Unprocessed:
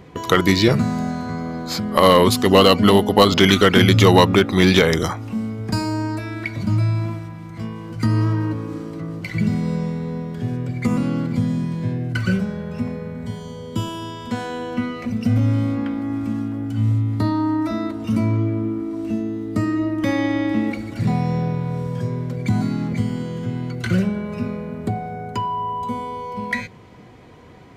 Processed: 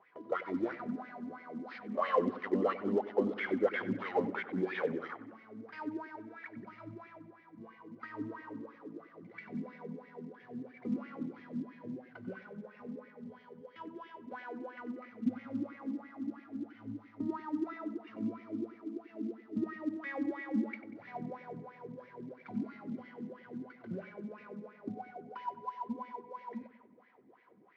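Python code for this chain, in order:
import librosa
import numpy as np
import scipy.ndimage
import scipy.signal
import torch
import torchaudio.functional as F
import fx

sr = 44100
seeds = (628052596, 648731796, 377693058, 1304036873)

p1 = fx.cvsd(x, sr, bps=32000)
p2 = fx.low_shelf(p1, sr, hz=140.0, db=-11.5)
p3 = fx.wah_lfo(p2, sr, hz=3.0, low_hz=220.0, high_hz=2100.0, q=6.1)
p4 = fx.quant_float(p3, sr, bits=4)
p5 = fx.air_absorb(p4, sr, metres=140.0)
p6 = p5 + fx.echo_bbd(p5, sr, ms=94, stages=2048, feedback_pct=54, wet_db=-15.5, dry=0)
y = p6 * 10.0 ** (-4.0 / 20.0)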